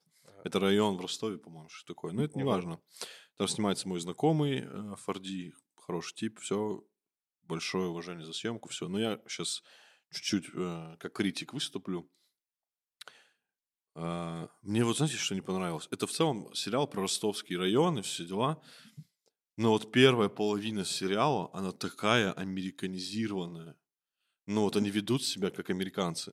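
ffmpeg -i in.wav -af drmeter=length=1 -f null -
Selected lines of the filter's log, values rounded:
Channel 1: DR: 16.3
Overall DR: 16.3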